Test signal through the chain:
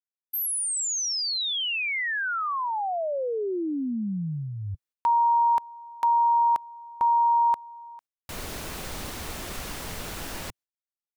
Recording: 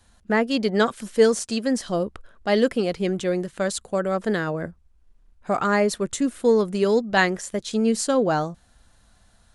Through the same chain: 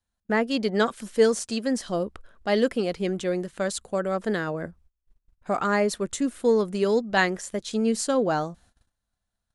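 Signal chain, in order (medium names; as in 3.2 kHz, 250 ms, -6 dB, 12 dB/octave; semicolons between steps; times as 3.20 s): gate -51 dBFS, range -23 dB; dynamic bell 120 Hz, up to -6 dB, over -46 dBFS, Q 2.8; trim -2.5 dB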